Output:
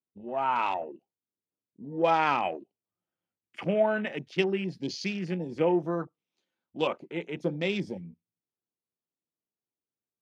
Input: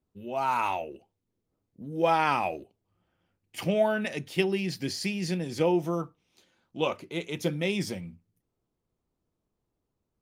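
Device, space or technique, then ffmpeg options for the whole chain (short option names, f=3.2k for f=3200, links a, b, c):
over-cleaned archive recording: -af "highpass=160,lowpass=6.4k,afwtdn=0.01"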